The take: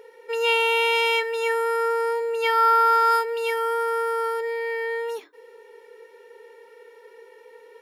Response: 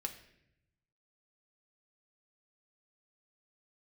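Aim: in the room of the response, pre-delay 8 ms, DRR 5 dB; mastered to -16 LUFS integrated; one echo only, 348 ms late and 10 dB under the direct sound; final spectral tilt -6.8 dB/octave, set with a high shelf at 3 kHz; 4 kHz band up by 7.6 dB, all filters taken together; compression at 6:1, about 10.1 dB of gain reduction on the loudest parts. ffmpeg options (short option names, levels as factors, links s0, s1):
-filter_complex "[0:a]highshelf=f=3000:g=7.5,equalizer=f=4000:t=o:g=5,acompressor=threshold=0.0631:ratio=6,aecho=1:1:348:0.316,asplit=2[s0][s1];[1:a]atrim=start_sample=2205,adelay=8[s2];[s1][s2]afir=irnorm=-1:irlink=0,volume=0.631[s3];[s0][s3]amix=inputs=2:normalize=0,volume=2.82"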